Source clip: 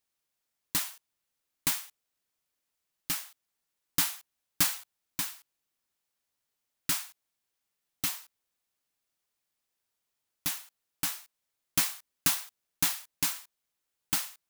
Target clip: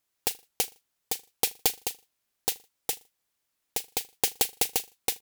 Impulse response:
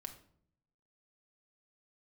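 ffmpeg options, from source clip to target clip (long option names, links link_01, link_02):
-af "aecho=1:1:111|222|333|444:0.0891|0.0455|0.0232|0.0118,asetrate=122598,aresample=44100,volume=8.5dB"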